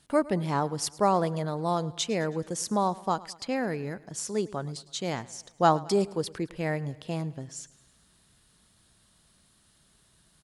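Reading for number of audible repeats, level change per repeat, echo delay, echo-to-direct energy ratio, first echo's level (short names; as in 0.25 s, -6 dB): 3, -5.0 dB, 0.107 s, -19.0 dB, -20.5 dB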